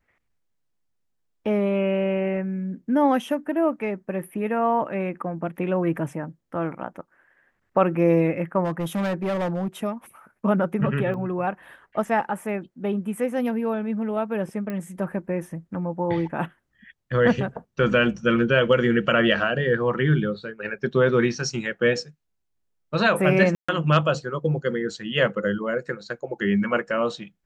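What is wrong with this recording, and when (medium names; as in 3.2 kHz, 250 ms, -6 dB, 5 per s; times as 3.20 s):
8.64–9.68 s: clipped -22 dBFS
11.14 s: dropout 2.6 ms
14.70 s: pop -19 dBFS
23.55–23.68 s: dropout 135 ms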